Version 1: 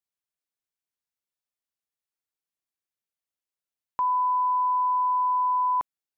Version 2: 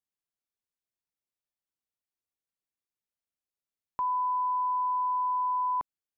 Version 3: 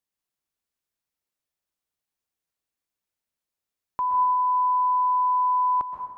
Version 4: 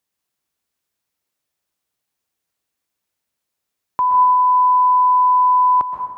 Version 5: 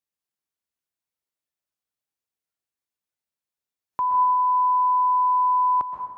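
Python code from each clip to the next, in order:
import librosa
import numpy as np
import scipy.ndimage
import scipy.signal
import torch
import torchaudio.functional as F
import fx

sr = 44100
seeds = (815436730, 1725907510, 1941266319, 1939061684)

y1 = fx.low_shelf(x, sr, hz=490.0, db=6.5)
y1 = y1 * librosa.db_to_amplitude(-6.0)
y2 = fx.rev_plate(y1, sr, seeds[0], rt60_s=1.2, hf_ratio=0.6, predelay_ms=110, drr_db=3.0)
y2 = y2 * librosa.db_to_amplitude(4.0)
y3 = scipy.signal.sosfilt(scipy.signal.butter(2, 54.0, 'highpass', fs=sr, output='sos'), y2)
y3 = y3 * librosa.db_to_amplitude(8.5)
y4 = fx.noise_reduce_blind(y3, sr, reduce_db=6)
y4 = y4 * librosa.db_to_amplitude(-6.5)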